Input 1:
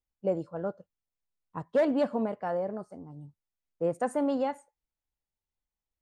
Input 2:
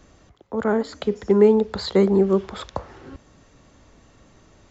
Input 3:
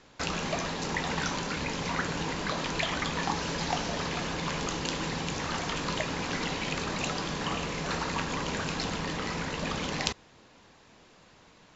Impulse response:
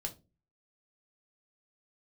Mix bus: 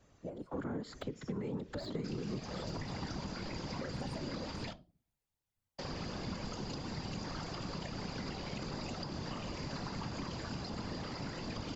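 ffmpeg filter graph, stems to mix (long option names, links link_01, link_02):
-filter_complex "[0:a]acompressor=threshold=-39dB:ratio=3,volume=-3.5dB[link_01];[1:a]deesser=0.85,volume=-8dB[link_02];[2:a]equalizer=frequency=4800:width=6.9:gain=14,adelay=1850,volume=-2.5dB,asplit=3[link_03][link_04][link_05];[link_03]atrim=end=4.73,asetpts=PTS-STARTPTS,afade=type=out:start_time=4.726:duration=0.004:curve=hsin[link_06];[link_04]atrim=start=4.73:end=5.79,asetpts=PTS-STARTPTS,volume=0[link_07];[link_05]atrim=start=5.79,asetpts=PTS-STARTPTS,afade=type=in:duration=0.004:curve=hsin[link_08];[link_06][link_07][link_08]concat=n=3:v=0:a=1,asplit=2[link_09][link_10];[link_10]volume=-4.5dB[link_11];[link_01][link_02]amix=inputs=2:normalize=0,dynaudnorm=framelen=220:gausssize=3:maxgain=11dB,alimiter=limit=-11dB:level=0:latency=1:release=403,volume=0dB[link_12];[3:a]atrim=start_sample=2205[link_13];[link_11][link_13]afir=irnorm=-1:irlink=0[link_14];[link_09][link_12][link_14]amix=inputs=3:normalize=0,acrossover=split=240|1100[link_15][link_16][link_17];[link_15]acompressor=threshold=-27dB:ratio=4[link_18];[link_16]acompressor=threshold=-38dB:ratio=4[link_19];[link_17]acompressor=threshold=-42dB:ratio=4[link_20];[link_18][link_19][link_20]amix=inputs=3:normalize=0,afftfilt=real='hypot(re,im)*cos(2*PI*random(0))':imag='hypot(re,im)*sin(2*PI*random(1))':win_size=512:overlap=0.75,acompressor=threshold=-35dB:ratio=6"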